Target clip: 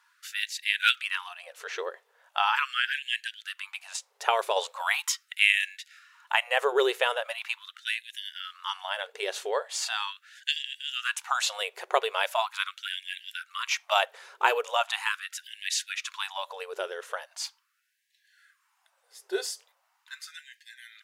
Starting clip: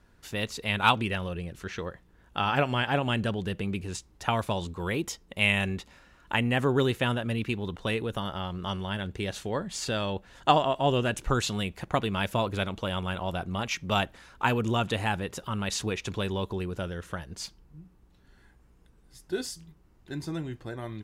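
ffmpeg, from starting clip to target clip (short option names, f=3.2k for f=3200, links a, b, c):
-filter_complex "[0:a]asettb=1/sr,asplit=3[a][b][c];[a]atrim=end=4.564[d];[b]atrim=start=4.56:end=5.35,asetpts=PTS-STARTPTS,afade=t=in:d=0.004:c=qsin,afade=t=out:st=0.786:d=0.004:c=qsin,acontrast=28[e];[c]atrim=start=5.346[f];[d][e]acrossfade=d=0.004:c1=hsin:c2=qsin[g];[g][f]acrossfade=d=0.004:c1=qsin:c2=hsin,afftfilt=real='re*gte(b*sr/1024,370*pow(1600/370,0.5+0.5*sin(2*PI*0.4*pts/sr)))':imag='im*gte(b*sr/1024,370*pow(1600/370,0.5+0.5*sin(2*PI*0.4*pts/sr)))':win_size=1024:overlap=0.75,volume=3.5dB"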